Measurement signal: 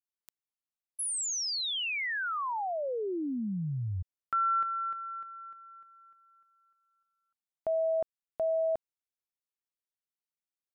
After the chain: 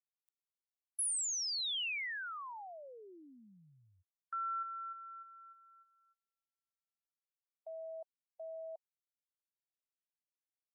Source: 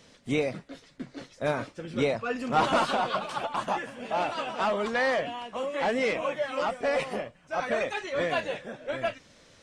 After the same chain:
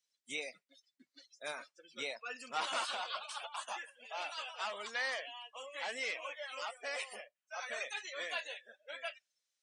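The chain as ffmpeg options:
ffmpeg -i in.wav -filter_complex "[0:a]acrossover=split=3400[link_01][link_02];[link_02]acompressor=threshold=-41dB:ratio=4:attack=1:release=60[link_03];[link_01][link_03]amix=inputs=2:normalize=0,aderivative,afftdn=noise_reduction=27:noise_floor=-53,volume=4dB" out.wav

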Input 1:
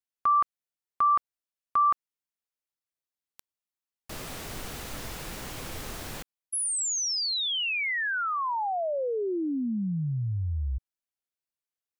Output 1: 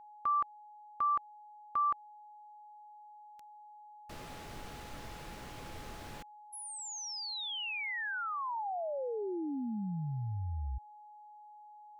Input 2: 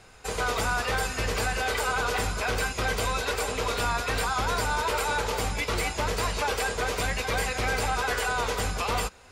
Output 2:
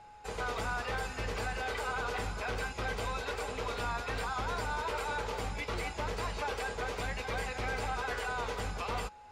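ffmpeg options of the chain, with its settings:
ffmpeg -i in.wav -af "lowpass=frequency=3700:poles=1,aeval=exprs='val(0)+0.00631*sin(2*PI*840*n/s)':channel_layout=same,volume=-7.5dB" out.wav

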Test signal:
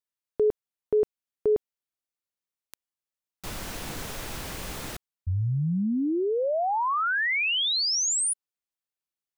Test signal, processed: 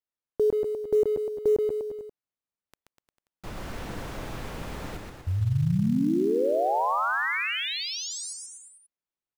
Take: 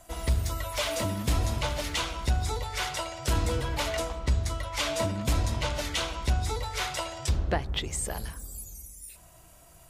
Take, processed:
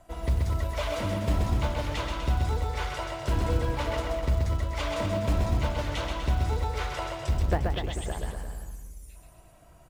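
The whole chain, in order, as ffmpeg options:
ffmpeg -i in.wav -af "highshelf=frequency=2400:gain=-10,aecho=1:1:130|247|352.3|447.1|532.4:0.631|0.398|0.251|0.158|0.1,acrusher=bits=7:mode=log:mix=0:aa=0.000001,highshelf=frequency=6500:gain=-5.5" out.wav

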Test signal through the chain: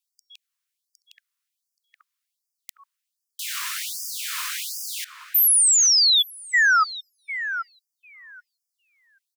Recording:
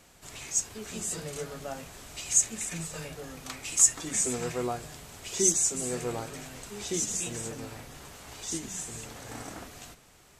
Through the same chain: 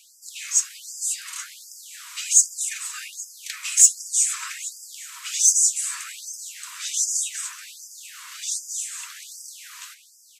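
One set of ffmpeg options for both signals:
ffmpeg -i in.wav -filter_complex "[0:a]asplit=2[link_01][link_02];[link_02]adelay=827,lowpass=frequency=1100:poles=1,volume=-5.5dB,asplit=2[link_03][link_04];[link_04]adelay=827,lowpass=frequency=1100:poles=1,volume=0.26,asplit=2[link_05][link_06];[link_06]adelay=827,lowpass=frequency=1100:poles=1,volume=0.26[link_07];[link_01][link_03][link_05][link_07]amix=inputs=4:normalize=0,acontrast=70,afftfilt=real='re*gte(b*sr/1024,910*pow(4800/910,0.5+0.5*sin(2*PI*1.3*pts/sr)))':imag='im*gte(b*sr/1024,910*pow(4800/910,0.5+0.5*sin(2*PI*1.3*pts/sr)))':win_size=1024:overlap=0.75,volume=1.5dB" out.wav

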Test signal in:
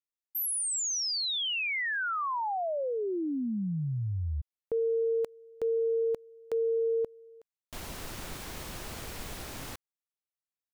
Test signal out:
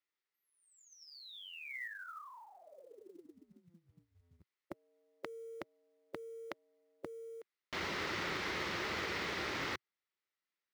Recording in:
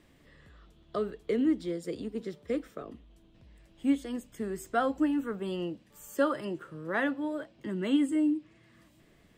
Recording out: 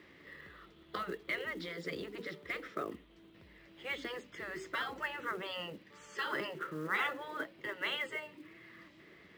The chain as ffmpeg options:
ffmpeg -i in.wav -af "afftfilt=real='re*lt(hypot(re,im),0.0794)':imag='im*lt(hypot(re,im),0.0794)':win_size=1024:overlap=0.75,highpass=120,equalizer=frequency=130:width_type=q:width=4:gain=-10,equalizer=frequency=240:width_type=q:width=4:gain=-7,equalizer=frequency=370:width_type=q:width=4:gain=4,equalizer=frequency=700:width_type=q:width=4:gain=-5,equalizer=frequency=1300:width_type=q:width=4:gain=4,equalizer=frequency=2000:width_type=q:width=4:gain=8,lowpass=frequency=5100:width=0.5412,lowpass=frequency=5100:width=1.3066,acrusher=bits=6:mode=log:mix=0:aa=0.000001,volume=4dB" out.wav

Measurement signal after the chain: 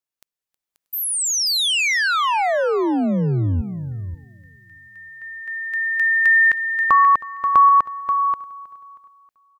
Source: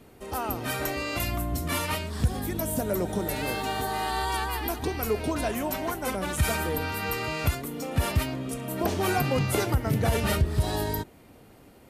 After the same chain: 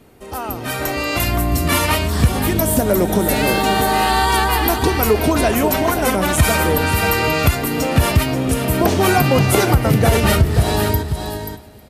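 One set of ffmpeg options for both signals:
ffmpeg -i in.wav -filter_complex "[0:a]dynaudnorm=framelen=170:gausssize=13:maxgain=14dB,asplit=2[link_01][link_02];[link_02]aecho=0:1:533:0.316[link_03];[link_01][link_03]amix=inputs=2:normalize=0,acompressor=threshold=-22dB:ratio=1.5,asplit=2[link_04][link_05];[link_05]aecho=0:1:317|634|951|1268:0.1|0.049|0.024|0.0118[link_06];[link_04][link_06]amix=inputs=2:normalize=0,volume=4dB" out.wav

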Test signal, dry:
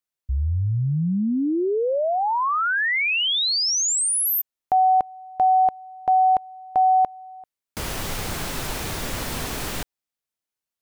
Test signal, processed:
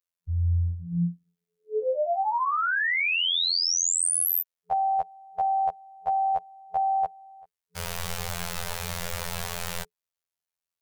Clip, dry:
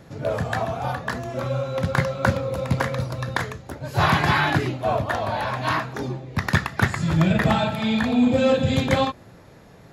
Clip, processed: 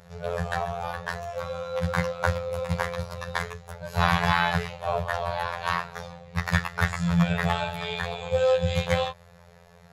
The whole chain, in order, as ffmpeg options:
ffmpeg -i in.wav -af "afftfilt=real='re*(1-between(b*sr/4096,180,420))':imag='im*(1-between(b*sr/4096,180,420))':win_size=4096:overlap=0.75,afftfilt=real='hypot(re,im)*cos(PI*b)':imag='0':win_size=2048:overlap=0.75" out.wav

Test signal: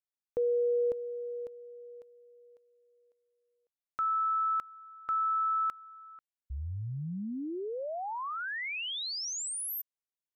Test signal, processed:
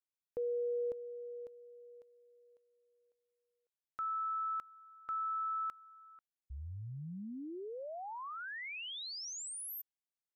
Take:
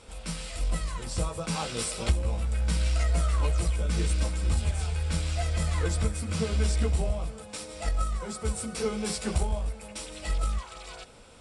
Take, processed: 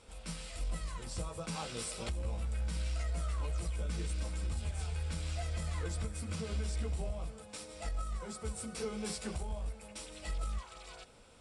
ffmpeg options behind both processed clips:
ffmpeg -i in.wav -af "alimiter=limit=-21dB:level=0:latency=1:release=104,volume=-7.5dB" out.wav

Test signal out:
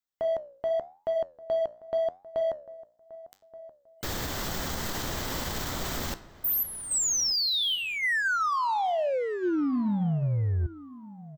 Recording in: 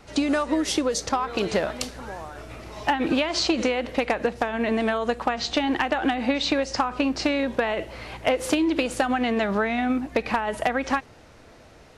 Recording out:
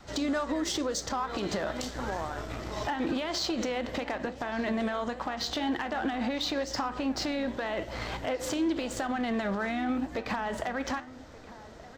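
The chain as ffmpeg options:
ffmpeg -i in.wav -filter_complex "[0:a]asplit=2[link_01][link_02];[link_02]aeval=exprs='sgn(val(0))*max(abs(val(0))-0.00891,0)':channel_layout=same,volume=-5dB[link_03];[link_01][link_03]amix=inputs=2:normalize=0,acompressor=threshold=-26dB:ratio=6,flanger=delay=9.8:depth=7.8:regen=-81:speed=0.88:shape=triangular,adynamicequalizer=threshold=0.00316:dfrequency=450:dqfactor=5.2:tfrequency=450:tqfactor=5.2:attack=5:release=100:ratio=0.375:range=3:mode=cutabove:tftype=bell,alimiter=level_in=3.5dB:limit=-24dB:level=0:latency=1:release=23,volume=-3.5dB,acontrast=39,superequalizer=12b=0.562:16b=0.282,asplit=2[link_04][link_05];[link_05]adelay=1177,lowpass=frequency=2200:poles=1,volume=-16.5dB,asplit=2[link_06][link_07];[link_07]adelay=1177,lowpass=frequency=2200:poles=1,volume=0.25[link_08];[link_06][link_08]amix=inputs=2:normalize=0[link_09];[link_04][link_09]amix=inputs=2:normalize=0,aeval=exprs='0.0944*(cos(1*acos(clip(val(0)/0.0944,-1,1)))-cos(1*PI/2))+0.00237*(cos(7*acos(clip(val(0)/0.0944,-1,1)))-cos(7*PI/2))':channel_layout=same" out.wav

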